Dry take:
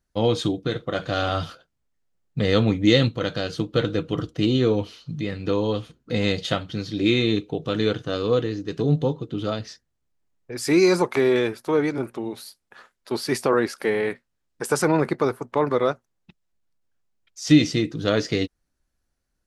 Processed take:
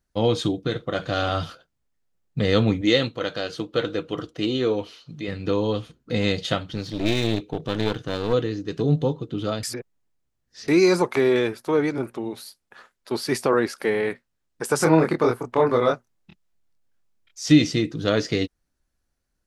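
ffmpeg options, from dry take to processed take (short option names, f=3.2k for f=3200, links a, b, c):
-filter_complex "[0:a]asettb=1/sr,asplit=3[a][b][c];[a]atrim=end=2.814[d];[b]atrim=start=2.81:end=5.28,asetpts=PTS-STARTPTS,afade=t=in:d=0.004:c=qsin,afade=t=out:st=2.466:d=0.004:c=qsin,bass=f=250:g=-10,treble=f=4k:g=-2[e];[c]atrim=start=5.276[f];[d][e]acrossfade=d=0.004:c1=hsin:c2=qsin[g];[g][f]acrossfade=d=0.004:c1=qsin:c2=hsin,asplit=3[h][i][j];[h]afade=t=out:st=6.66:d=0.02[k];[i]aeval=exprs='clip(val(0),-1,0.0266)':c=same,afade=t=in:st=6.66:d=0.02,afade=t=out:st=8.32:d=0.02[l];[j]afade=t=in:st=8.32:d=0.02[m];[k][l][m]amix=inputs=3:normalize=0,asettb=1/sr,asplit=3[n][o][p];[n]atrim=end=14.784[q];[o]atrim=start=14.78:end=17.47,asetpts=PTS-STARTPTS,afade=t=in:d=0.004:c=qsin,afade=t=out:st=2.686:d=0.004:c=qsin,asplit=2[r][s];[s]adelay=25,volume=-2dB[t];[r][t]amix=inputs=2:normalize=0,atrim=end_sample=118629[u];[p]atrim=start=17.466[v];[q][u]acrossfade=d=0.004:c1=hsin:c2=qsin[w];[w][v]acrossfade=d=0.004:c1=qsin:c2=hsin,asplit=3[x][y][z];[x]atrim=end=9.632[aa];[y]atrim=start=9.628:end=10.682,asetpts=PTS-STARTPTS,areverse[ab];[z]atrim=start=10.678[ac];[aa][ab]acrossfade=d=0.004:c1=hsin:c2=hsin[ad];[ad][ac]acrossfade=d=0.004:c1=hsin:c2=hsin"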